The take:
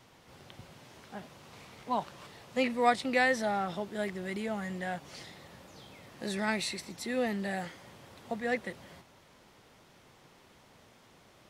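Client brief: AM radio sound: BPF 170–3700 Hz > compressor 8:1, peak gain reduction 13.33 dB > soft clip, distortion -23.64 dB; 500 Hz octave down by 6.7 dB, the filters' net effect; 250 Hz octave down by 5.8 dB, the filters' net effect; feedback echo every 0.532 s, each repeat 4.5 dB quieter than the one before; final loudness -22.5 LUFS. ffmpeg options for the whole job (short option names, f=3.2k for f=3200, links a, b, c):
-af "highpass=170,lowpass=3.7k,equalizer=f=250:t=o:g=-4,equalizer=f=500:t=o:g=-7,aecho=1:1:532|1064|1596|2128|2660|3192|3724|4256|4788:0.596|0.357|0.214|0.129|0.0772|0.0463|0.0278|0.0167|0.01,acompressor=threshold=-35dB:ratio=8,asoftclip=threshold=-28dB,volume=19dB"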